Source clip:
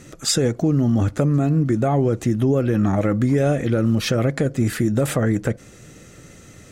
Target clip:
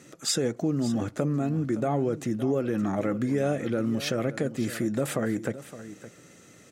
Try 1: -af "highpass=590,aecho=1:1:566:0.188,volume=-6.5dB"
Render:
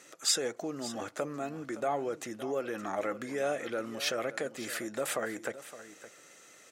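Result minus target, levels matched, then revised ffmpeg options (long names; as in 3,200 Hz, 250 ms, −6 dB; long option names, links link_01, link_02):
125 Hz band −13.5 dB
-af "highpass=170,aecho=1:1:566:0.188,volume=-6.5dB"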